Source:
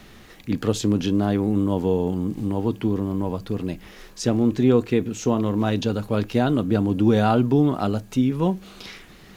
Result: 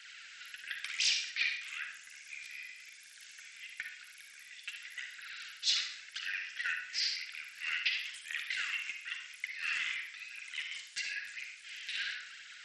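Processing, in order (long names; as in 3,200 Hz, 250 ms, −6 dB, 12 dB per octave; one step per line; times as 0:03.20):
phase shifter 1.3 Hz, delay 3.7 ms, feedback 58%
Butterworth high-pass 2,000 Hz 72 dB per octave
four-comb reverb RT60 0.43 s, combs from 31 ms, DRR 3.5 dB
in parallel at −4.5 dB: hard clipping −26 dBFS, distortion −16 dB
on the sum: wrong playback speed 45 rpm record played at 33 rpm
level −4 dB
SBC 64 kbit/s 32,000 Hz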